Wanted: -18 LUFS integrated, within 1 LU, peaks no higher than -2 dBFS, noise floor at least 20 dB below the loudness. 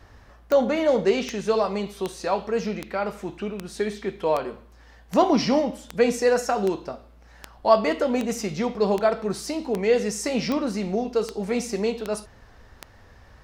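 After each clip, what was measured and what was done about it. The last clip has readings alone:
clicks found 17; loudness -24.5 LUFS; peak level -4.0 dBFS; loudness target -18.0 LUFS
-> de-click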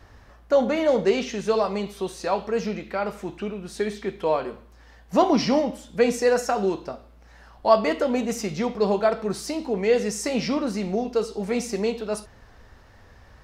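clicks found 0; loudness -24.5 LUFS; peak level -4.0 dBFS; loudness target -18.0 LUFS
-> trim +6.5 dB; peak limiter -2 dBFS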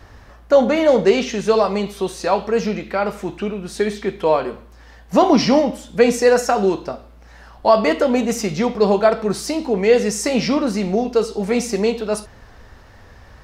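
loudness -18.5 LUFS; peak level -2.0 dBFS; noise floor -45 dBFS

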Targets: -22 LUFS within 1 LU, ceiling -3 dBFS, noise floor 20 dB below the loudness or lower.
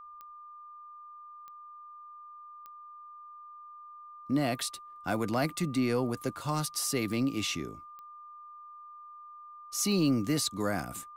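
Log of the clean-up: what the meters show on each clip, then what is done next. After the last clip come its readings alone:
clicks found 8; steady tone 1.2 kHz; tone level -46 dBFS; loudness -31.0 LUFS; peak level -18.0 dBFS; loudness target -22.0 LUFS
-> de-click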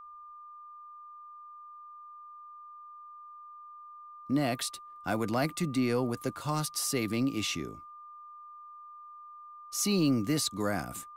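clicks found 0; steady tone 1.2 kHz; tone level -46 dBFS
-> band-stop 1.2 kHz, Q 30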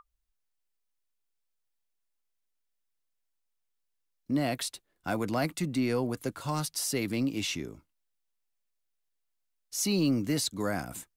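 steady tone not found; loudness -31.0 LUFS; peak level -18.0 dBFS; loudness target -22.0 LUFS
-> trim +9 dB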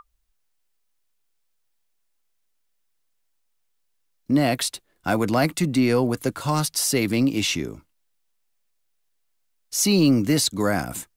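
loudness -22.0 LUFS; peak level -9.0 dBFS; noise floor -70 dBFS

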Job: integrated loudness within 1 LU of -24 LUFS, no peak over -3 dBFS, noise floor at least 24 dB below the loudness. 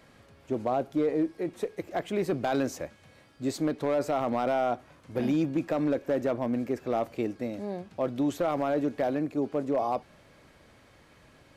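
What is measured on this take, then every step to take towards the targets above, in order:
clipped samples 0.9%; clipping level -20.0 dBFS; loudness -30.0 LUFS; peak level -20.0 dBFS; loudness target -24.0 LUFS
-> clip repair -20 dBFS; trim +6 dB

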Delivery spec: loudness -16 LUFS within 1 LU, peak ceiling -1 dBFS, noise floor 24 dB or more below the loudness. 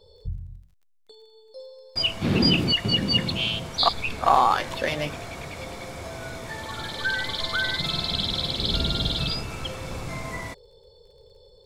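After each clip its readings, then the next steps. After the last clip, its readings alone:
tick rate 21 per s; loudness -24.5 LUFS; peak level -5.5 dBFS; loudness target -16.0 LUFS
-> de-click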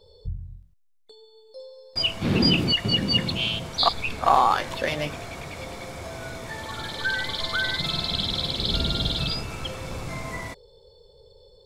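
tick rate 0.17 per s; loudness -24.5 LUFS; peak level -5.5 dBFS; loudness target -16.0 LUFS
-> trim +8.5 dB; peak limiter -1 dBFS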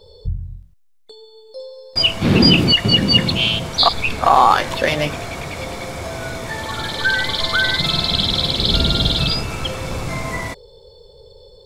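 loudness -16.5 LUFS; peak level -1.0 dBFS; noise floor -47 dBFS

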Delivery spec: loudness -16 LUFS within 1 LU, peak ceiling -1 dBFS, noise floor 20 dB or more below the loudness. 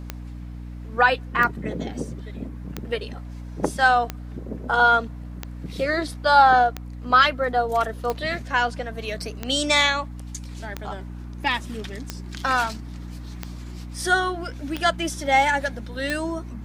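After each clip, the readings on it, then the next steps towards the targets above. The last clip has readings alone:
clicks found 13; hum 60 Hz; highest harmonic 300 Hz; hum level -33 dBFS; loudness -22.0 LUFS; peak level -4.5 dBFS; loudness target -16.0 LUFS
-> de-click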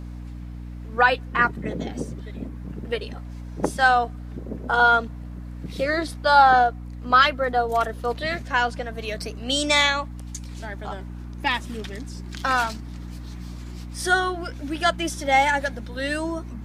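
clicks found 0; hum 60 Hz; highest harmonic 300 Hz; hum level -33 dBFS
-> hum notches 60/120/180/240/300 Hz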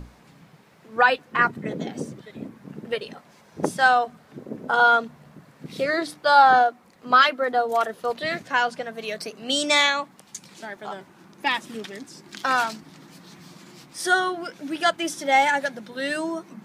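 hum not found; loudness -22.0 LUFS; peak level -5.0 dBFS; loudness target -16.0 LUFS
-> trim +6 dB; peak limiter -1 dBFS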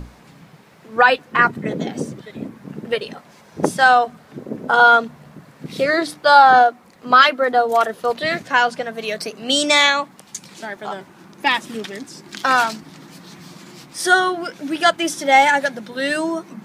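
loudness -16.5 LUFS; peak level -1.0 dBFS; noise floor -48 dBFS

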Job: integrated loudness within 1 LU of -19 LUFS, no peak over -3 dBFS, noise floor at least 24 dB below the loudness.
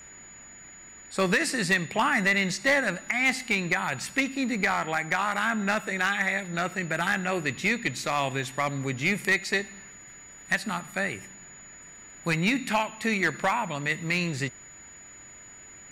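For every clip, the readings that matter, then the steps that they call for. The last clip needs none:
clipped samples 0.5%; clipping level -16.5 dBFS; steady tone 6.9 kHz; tone level -46 dBFS; loudness -26.5 LUFS; peak level -16.5 dBFS; loudness target -19.0 LUFS
-> clip repair -16.5 dBFS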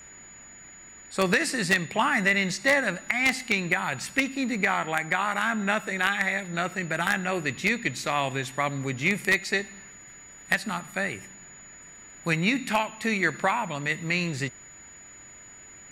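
clipped samples 0.0%; steady tone 6.9 kHz; tone level -46 dBFS
-> band-stop 6.9 kHz, Q 30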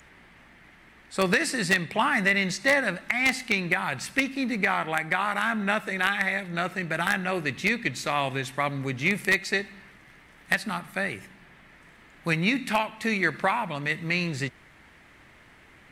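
steady tone not found; loudness -26.0 LUFS; peak level -7.5 dBFS; loudness target -19.0 LUFS
-> trim +7 dB; peak limiter -3 dBFS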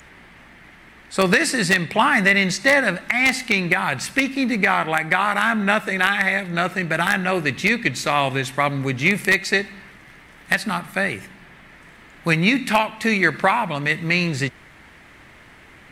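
loudness -19.5 LUFS; peak level -3.0 dBFS; noise floor -47 dBFS

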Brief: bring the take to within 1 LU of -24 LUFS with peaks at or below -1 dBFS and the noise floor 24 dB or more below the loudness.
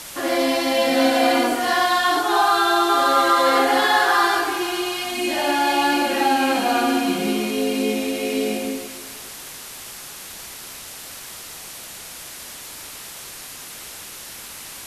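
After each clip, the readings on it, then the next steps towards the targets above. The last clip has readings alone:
noise floor -37 dBFS; noise floor target -43 dBFS; loudness -19.0 LUFS; peak level -4.0 dBFS; loudness target -24.0 LUFS
-> noise reduction 6 dB, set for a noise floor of -37 dBFS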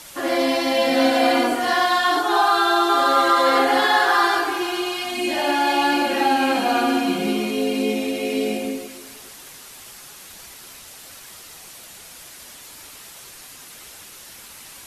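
noise floor -42 dBFS; noise floor target -43 dBFS
-> noise reduction 6 dB, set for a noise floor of -42 dBFS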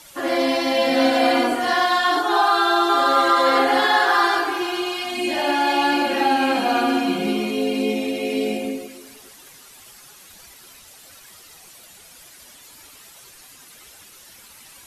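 noise floor -46 dBFS; loudness -19.0 LUFS; peak level -4.0 dBFS; loudness target -24.0 LUFS
-> trim -5 dB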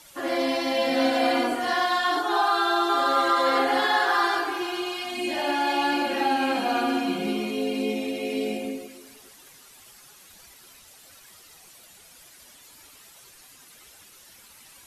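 loudness -24.0 LUFS; peak level -9.0 dBFS; noise floor -51 dBFS

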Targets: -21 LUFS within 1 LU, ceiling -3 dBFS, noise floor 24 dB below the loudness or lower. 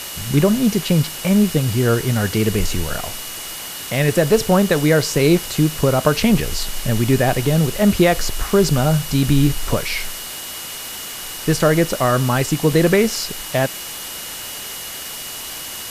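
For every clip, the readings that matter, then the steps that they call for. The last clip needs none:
steady tone 2.9 kHz; tone level -37 dBFS; noise floor -31 dBFS; noise floor target -43 dBFS; loudness -18.5 LUFS; peak level -1.5 dBFS; loudness target -21.0 LUFS
-> band-stop 2.9 kHz, Q 30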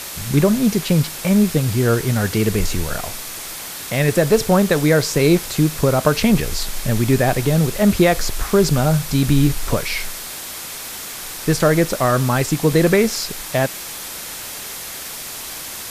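steady tone not found; noise floor -31 dBFS; noise floor target -43 dBFS
-> noise reduction 12 dB, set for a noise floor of -31 dBFS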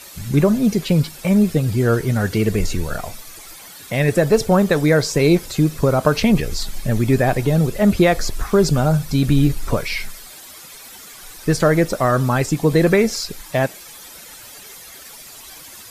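noise floor -40 dBFS; noise floor target -42 dBFS
-> noise reduction 6 dB, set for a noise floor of -40 dBFS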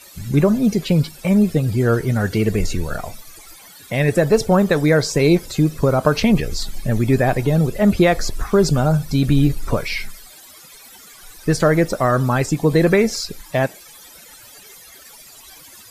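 noise floor -43 dBFS; loudness -18.0 LUFS; peak level -2.0 dBFS; loudness target -21.0 LUFS
-> trim -3 dB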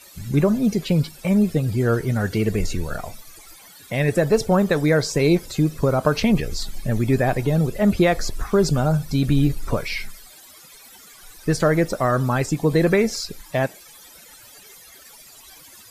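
loudness -21.0 LUFS; peak level -5.0 dBFS; noise floor -46 dBFS

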